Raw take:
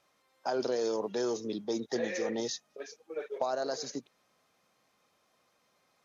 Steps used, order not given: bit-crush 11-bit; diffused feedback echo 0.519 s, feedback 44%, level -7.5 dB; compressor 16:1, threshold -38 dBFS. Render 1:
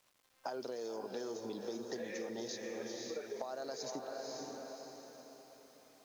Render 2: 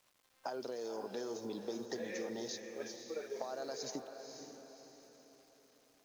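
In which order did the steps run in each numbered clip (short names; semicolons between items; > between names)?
diffused feedback echo > compressor > bit-crush; compressor > bit-crush > diffused feedback echo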